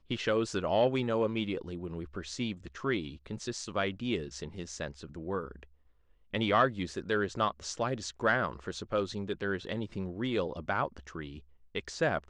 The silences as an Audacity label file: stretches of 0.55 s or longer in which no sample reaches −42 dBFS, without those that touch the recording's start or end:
5.630000	6.330000	silence